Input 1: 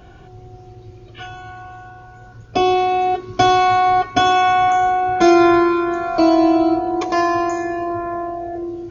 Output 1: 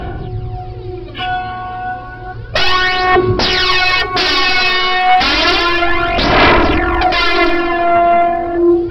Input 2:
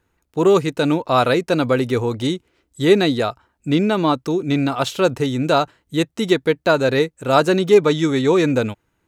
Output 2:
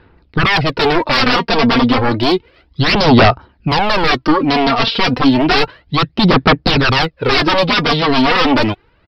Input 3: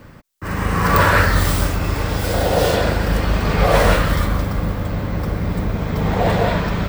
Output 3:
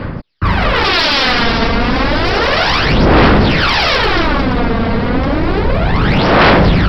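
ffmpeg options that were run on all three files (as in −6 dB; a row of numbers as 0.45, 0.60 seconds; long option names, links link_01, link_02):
-af "aresample=11025,aeval=exprs='0.891*sin(PI/2*8.91*val(0)/0.891)':channel_layout=same,aresample=44100,aphaser=in_gain=1:out_gain=1:delay=4.4:decay=0.58:speed=0.31:type=sinusoidal,volume=-10dB"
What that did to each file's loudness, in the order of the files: +4.5, +5.0, +6.5 LU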